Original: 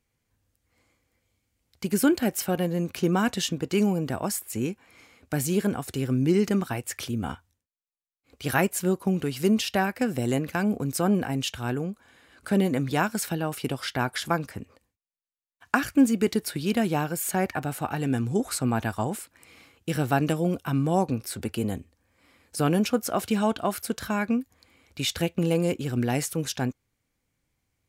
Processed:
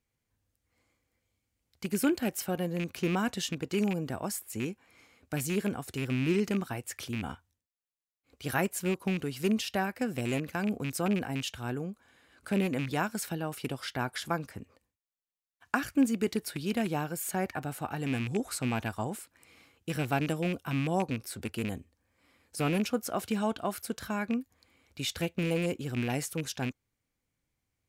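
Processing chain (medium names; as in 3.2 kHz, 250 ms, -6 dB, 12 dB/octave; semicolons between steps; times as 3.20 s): rattle on loud lows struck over -25 dBFS, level -21 dBFS; trim -6 dB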